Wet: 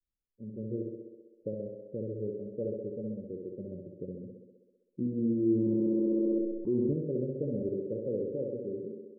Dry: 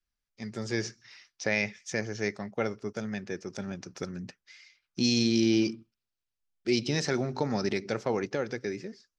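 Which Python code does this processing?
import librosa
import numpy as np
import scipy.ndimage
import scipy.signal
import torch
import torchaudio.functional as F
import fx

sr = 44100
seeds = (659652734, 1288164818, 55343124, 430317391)

p1 = scipy.signal.sosfilt(scipy.signal.cheby1(8, 1.0, 580.0, 'lowpass', fs=sr, output='sos'), x)
p2 = p1 + fx.echo_thinned(p1, sr, ms=65, feedback_pct=76, hz=150.0, wet_db=-3, dry=0)
p3 = fx.env_flatten(p2, sr, amount_pct=100, at=(5.55, 6.93))
y = p3 * 10.0 ** (-4.0 / 20.0)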